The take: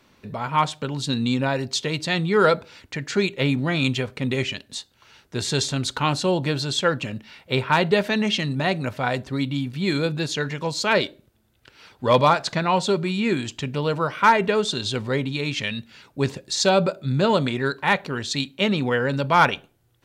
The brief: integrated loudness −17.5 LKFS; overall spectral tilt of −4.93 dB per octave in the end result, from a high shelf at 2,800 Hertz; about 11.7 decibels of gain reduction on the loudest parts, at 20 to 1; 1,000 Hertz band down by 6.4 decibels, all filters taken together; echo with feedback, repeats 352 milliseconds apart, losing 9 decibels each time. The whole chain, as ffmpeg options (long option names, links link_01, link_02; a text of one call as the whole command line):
ffmpeg -i in.wav -af "equalizer=frequency=1000:width_type=o:gain=-7.5,highshelf=frequency=2800:gain=-4,acompressor=threshold=-26dB:ratio=20,aecho=1:1:352|704|1056|1408:0.355|0.124|0.0435|0.0152,volume=13.5dB" out.wav